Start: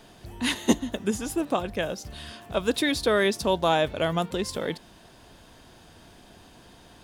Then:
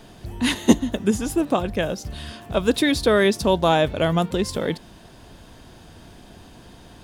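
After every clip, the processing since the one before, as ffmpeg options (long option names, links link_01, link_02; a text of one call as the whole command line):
ffmpeg -i in.wav -af "lowshelf=frequency=330:gain=6,volume=3dB" out.wav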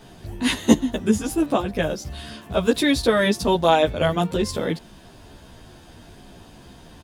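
ffmpeg -i in.wav -filter_complex "[0:a]asplit=2[link_01][link_02];[link_02]adelay=12,afreqshift=-2.4[link_03];[link_01][link_03]amix=inputs=2:normalize=1,volume=3dB" out.wav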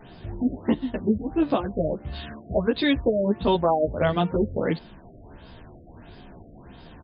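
ffmpeg -i in.wav -af "alimiter=limit=-10.5dB:level=0:latency=1:release=424,afftfilt=real='re*lt(b*sr/1024,700*pow(5200/700,0.5+0.5*sin(2*PI*1.5*pts/sr)))':imag='im*lt(b*sr/1024,700*pow(5200/700,0.5+0.5*sin(2*PI*1.5*pts/sr)))':win_size=1024:overlap=0.75" out.wav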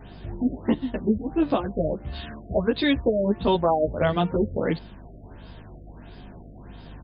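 ffmpeg -i in.wav -af "aeval=exprs='val(0)+0.00631*(sin(2*PI*50*n/s)+sin(2*PI*2*50*n/s)/2+sin(2*PI*3*50*n/s)/3+sin(2*PI*4*50*n/s)/4+sin(2*PI*5*50*n/s)/5)':channel_layout=same" out.wav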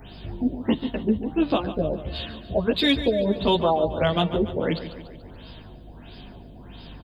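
ffmpeg -i in.wav -filter_complex "[0:a]acrossover=split=440[link_01][link_02];[link_02]aexciter=amount=1.6:drive=8.5:freq=2600[link_03];[link_01][link_03]amix=inputs=2:normalize=0,aecho=1:1:144|288|432|576|720|864:0.237|0.13|0.0717|0.0395|0.0217|0.0119" out.wav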